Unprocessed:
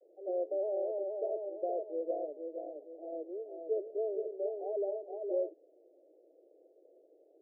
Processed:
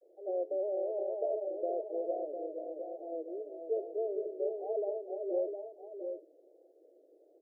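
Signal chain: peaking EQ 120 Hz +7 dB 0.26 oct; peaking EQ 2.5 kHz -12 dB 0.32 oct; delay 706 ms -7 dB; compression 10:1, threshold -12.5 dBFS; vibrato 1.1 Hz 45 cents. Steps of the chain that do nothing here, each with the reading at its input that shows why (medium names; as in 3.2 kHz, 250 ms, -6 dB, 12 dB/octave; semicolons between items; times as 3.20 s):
peaking EQ 120 Hz: input has nothing below 300 Hz; peaking EQ 2.5 kHz: input has nothing above 810 Hz; compression, threshold -12.5 dBFS: peak at its input -22.0 dBFS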